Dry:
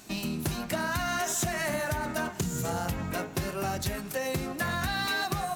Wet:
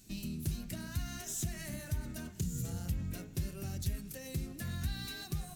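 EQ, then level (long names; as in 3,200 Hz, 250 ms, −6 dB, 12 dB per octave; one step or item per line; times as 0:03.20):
guitar amp tone stack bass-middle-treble 10-0-1
high-shelf EQ 4,600 Hz +4.5 dB
+9.0 dB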